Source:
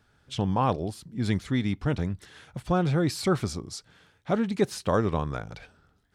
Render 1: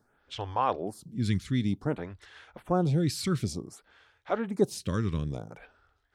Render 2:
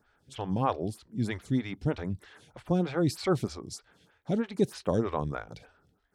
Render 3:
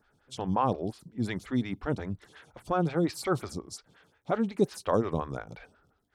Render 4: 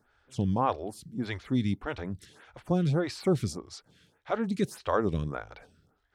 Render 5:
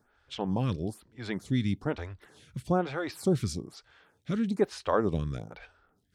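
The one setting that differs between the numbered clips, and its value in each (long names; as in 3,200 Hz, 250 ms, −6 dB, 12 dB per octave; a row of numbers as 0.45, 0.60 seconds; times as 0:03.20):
phaser with staggered stages, speed: 0.55, 3.2, 5.6, 1.7, 1.1 Hertz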